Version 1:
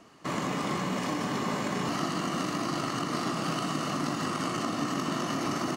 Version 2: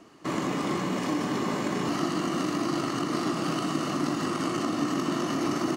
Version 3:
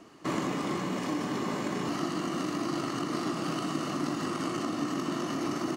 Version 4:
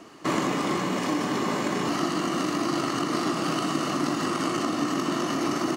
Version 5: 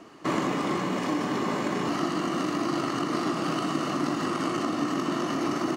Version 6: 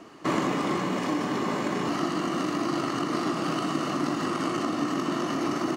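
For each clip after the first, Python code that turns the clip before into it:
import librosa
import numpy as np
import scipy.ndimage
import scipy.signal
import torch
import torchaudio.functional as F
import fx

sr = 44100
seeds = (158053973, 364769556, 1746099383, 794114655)

y1 = fx.peak_eq(x, sr, hz=330.0, db=7.0, octaves=0.61)
y2 = fx.rider(y1, sr, range_db=10, speed_s=0.5)
y2 = F.gain(torch.from_numpy(y2), -3.5).numpy()
y3 = fx.low_shelf(y2, sr, hz=260.0, db=-5.0)
y3 = F.gain(torch.from_numpy(y3), 7.0).numpy()
y4 = fx.high_shelf(y3, sr, hz=4000.0, db=-6.0)
y4 = F.gain(torch.from_numpy(y4), -1.0).numpy()
y5 = fx.rider(y4, sr, range_db=10, speed_s=2.0)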